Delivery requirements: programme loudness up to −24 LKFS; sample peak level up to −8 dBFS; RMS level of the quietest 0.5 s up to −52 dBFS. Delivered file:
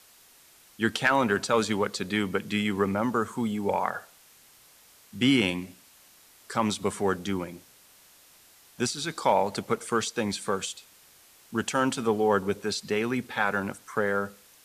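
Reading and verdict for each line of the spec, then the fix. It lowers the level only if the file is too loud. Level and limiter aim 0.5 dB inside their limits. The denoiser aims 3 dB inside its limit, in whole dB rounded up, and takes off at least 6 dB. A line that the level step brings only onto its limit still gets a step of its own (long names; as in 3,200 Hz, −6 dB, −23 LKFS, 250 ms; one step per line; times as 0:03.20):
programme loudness −27.5 LKFS: in spec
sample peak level −11.5 dBFS: in spec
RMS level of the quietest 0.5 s −56 dBFS: in spec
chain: no processing needed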